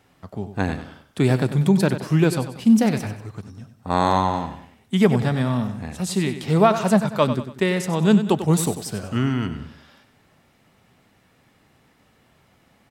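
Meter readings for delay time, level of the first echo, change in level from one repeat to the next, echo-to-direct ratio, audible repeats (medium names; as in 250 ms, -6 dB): 95 ms, -11.0 dB, -7.5 dB, -10.0 dB, 3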